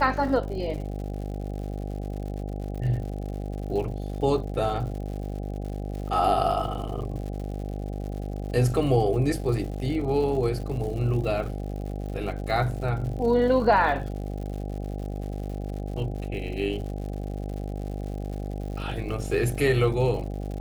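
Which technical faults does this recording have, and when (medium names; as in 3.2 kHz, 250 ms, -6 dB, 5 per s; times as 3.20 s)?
buzz 50 Hz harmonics 16 -32 dBFS
crackle 130 per s -36 dBFS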